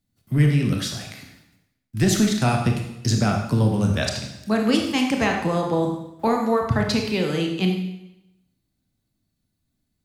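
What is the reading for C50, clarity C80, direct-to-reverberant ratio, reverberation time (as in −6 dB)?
4.5 dB, 7.0 dB, 1.5 dB, 0.90 s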